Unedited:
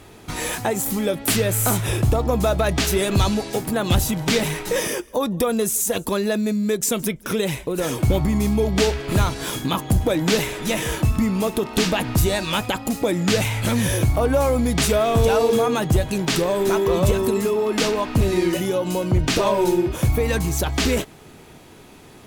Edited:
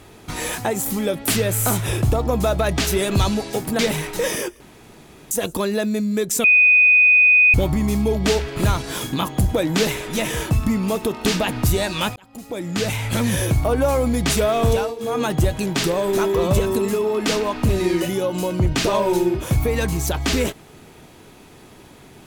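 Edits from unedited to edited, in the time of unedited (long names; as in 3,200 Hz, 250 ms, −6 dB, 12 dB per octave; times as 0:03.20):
0:03.79–0:04.31: remove
0:05.12–0:05.83: fill with room tone
0:06.96–0:08.06: beep over 2,490 Hz −9.5 dBFS
0:12.68–0:13.65: fade in
0:15.23–0:15.74: duck −15.5 dB, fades 0.24 s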